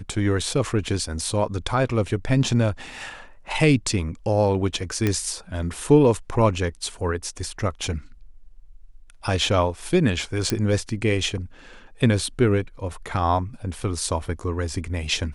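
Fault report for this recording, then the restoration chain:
5.07 s: pop -8 dBFS
10.50 s: pop -7 dBFS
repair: de-click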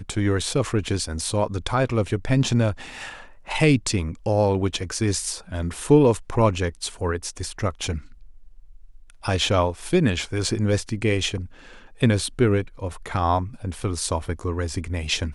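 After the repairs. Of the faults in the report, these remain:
nothing left

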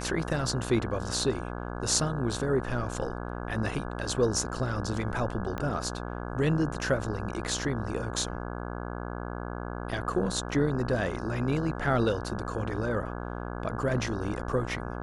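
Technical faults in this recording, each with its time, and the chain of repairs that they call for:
buzz 60 Hz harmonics 28 -36 dBFS
5.58 s: pop -20 dBFS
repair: de-click; de-hum 60 Hz, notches 28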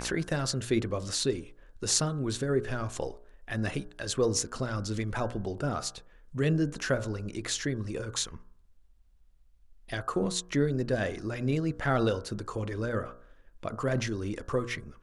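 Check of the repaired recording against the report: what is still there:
5.58 s: pop

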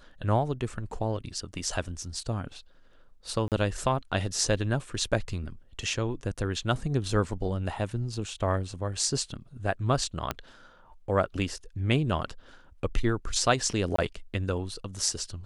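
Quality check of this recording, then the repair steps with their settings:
3.48–3.52 s: dropout 38 ms
10.31 s: pop -13 dBFS
13.96–13.98 s: dropout 24 ms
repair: de-click; interpolate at 3.48 s, 38 ms; interpolate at 13.96 s, 24 ms

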